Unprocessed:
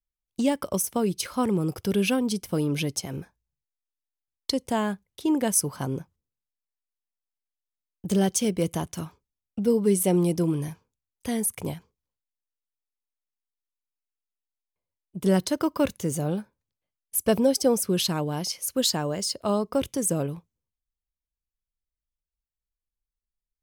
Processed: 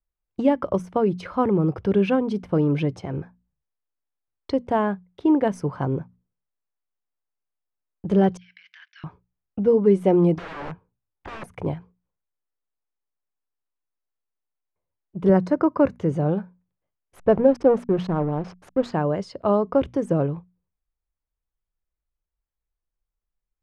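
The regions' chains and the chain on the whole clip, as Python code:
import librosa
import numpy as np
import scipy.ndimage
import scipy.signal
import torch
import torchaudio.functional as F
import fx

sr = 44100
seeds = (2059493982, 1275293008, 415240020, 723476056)

y = fx.chain(x, sr, fx.cheby1_bandpass(low_hz=1600.0, high_hz=5500.0, order=4),
    fx.over_compress(threshold_db=-49.0, ratio=-1.0), at=(8.37, 9.04))
y = fx.chain(y, sr, fx.air_absorb(metres=230.0),
    fx.overflow_wrap(gain_db=32.5), at=(10.38, 11.44))
y = fx.chain(y, sr, fx.highpass(hz=86.0, slope=12),
    fx.peak_eq(hz=3300.0, db=-14.5, octaves=0.41), at=(15.29, 15.99))
y = fx.chain(y, sr, fx.peak_eq(hz=3500.0, db=-8.0, octaves=1.5),
    fx.backlash(play_db=-30.5), at=(17.16, 18.92))
y = scipy.signal.sosfilt(scipy.signal.butter(2, 1500.0, 'lowpass', fs=sr, output='sos'), y)
y = fx.peak_eq(y, sr, hz=230.0, db=-6.0, octaves=0.3)
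y = fx.hum_notches(y, sr, base_hz=60, count=4)
y = y * 10.0 ** (6.0 / 20.0)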